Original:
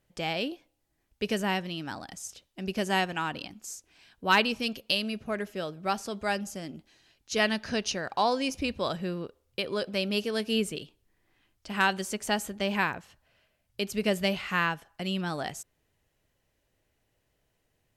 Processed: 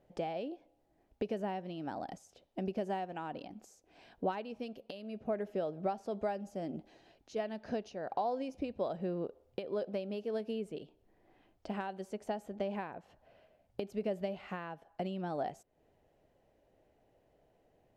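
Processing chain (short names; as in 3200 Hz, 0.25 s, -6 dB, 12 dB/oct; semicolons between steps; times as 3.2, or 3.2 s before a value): high shelf 2300 Hz +11.5 dB; compressor 5:1, threshold -40 dBFS, peak gain reduction 23.5 dB; EQ curve 110 Hz 0 dB, 190 Hz +5 dB, 730 Hz +11 dB, 1100 Hz -2 dB, 8700 Hz -23 dB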